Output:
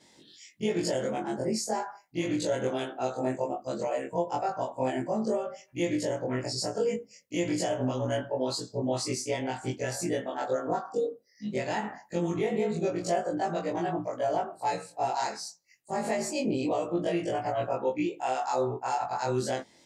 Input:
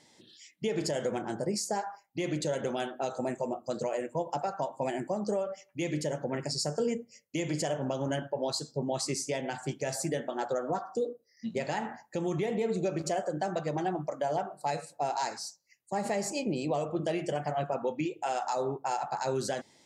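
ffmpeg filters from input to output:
-af "afftfilt=real='re':imag='-im':win_size=2048:overlap=0.75,adynamicequalizer=threshold=0.00141:dfrequency=4200:dqfactor=0.7:tfrequency=4200:tqfactor=0.7:attack=5:release=100:ratio=0.375:range=1.5:mode=cutabove:tftype=highshelf,volume=2.11"

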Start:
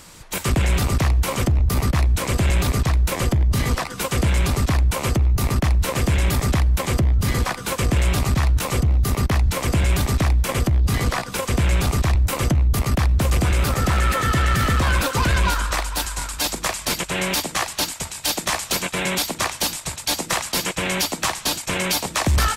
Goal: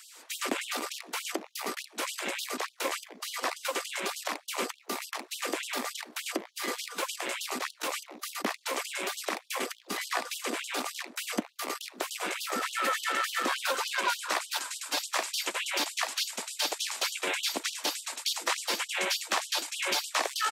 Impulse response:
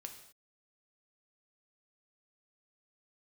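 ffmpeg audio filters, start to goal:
-filter_complex "[0:a]atempo=1.1,acrossover=split=6300[s0][s1];[s1]acompressor=threshold=0.0224:ratio=4:attack=1:release=60[s2];[s0][s2]amix=inputs=2:normalize=0,afftfilt=real='re*gte(b*sr/1024,210*pow(2900/210,0.5+0.5*sin(2*PI*3.4*pts/sr)))':imag='im*gte(b*sr/1024,210*pow(2900/210,0.5+0.5*sin(2*PI*3.4*pts/sr)))':win_size=1024:overlap=0.75,volume=0.562"

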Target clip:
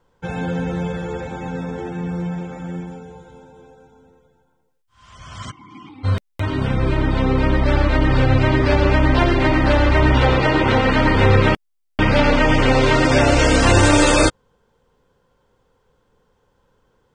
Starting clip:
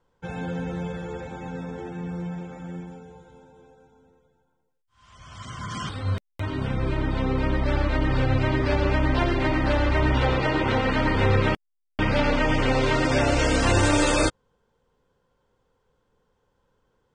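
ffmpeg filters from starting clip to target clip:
-filter_complex "[0:a]asplit=3[s0][s1][s2];[s0]afade=t=out:st=5.5:d=0.02[s3];[s1]asplit=3[s4][s5][s6];[s4]bandpass=f=300:t=q:w=8,volume=1[s7];[s5]bandpass=f=870:t=q:w=8,volume=0.501[s8];[s6]bandpass=f=2240:t=q:w=8,volume=0.355[s9];[s7][s8][s9]amix=inputs=3:normalize=0,afade=t=in:st=5.5:d=0.02,afade=t=out:st=6.03:d=0.02[s10];[s2]afade=t=in:st=6.03:d=0.02[s11];[s3][s10][s11]amix=inputs=3:normalize=0,volume=2.24"

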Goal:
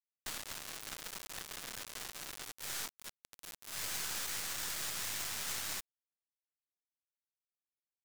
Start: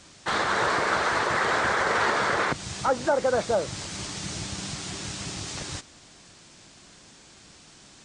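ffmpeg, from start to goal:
-af "acompressor=threshold=0.0158:ratio=3,aderivative,acrusher=bits=4:dc=4:mix=0:aa=0.000001,volume=2.24"

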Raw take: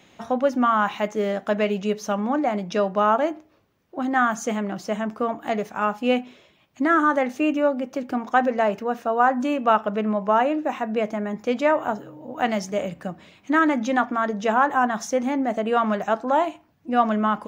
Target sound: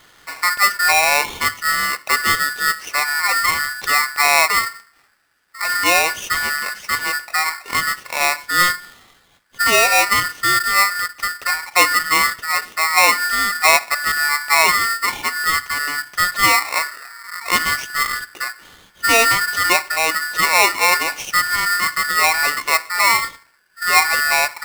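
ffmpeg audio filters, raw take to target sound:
-af "asetrate=31267,aresample=44100,aeval=exprs='val(0)*sgn(sin(2*PI*1600*n/s))':c=same,volume=1.68"

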